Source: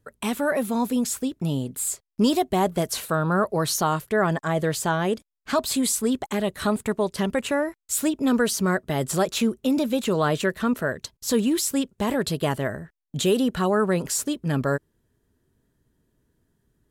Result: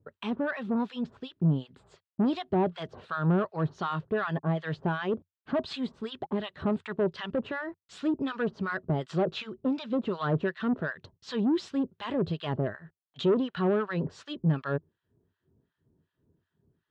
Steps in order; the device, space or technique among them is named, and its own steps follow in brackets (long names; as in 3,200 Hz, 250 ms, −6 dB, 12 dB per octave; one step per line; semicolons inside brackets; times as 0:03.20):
guitar amplifier with harmonic tremolo (two-band tremolo in antiphase 2.7 Hz, depth 100%, crossover 1,000 Hz; soft clipping −22 dBFS, distortion −12 dB; loudspeaker in its box 78–3,700 Hz, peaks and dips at 92 Hz +7 dB, 160 Hz +6 dB, 370 Hz +4 dB, 2,200 Hz −6 dB)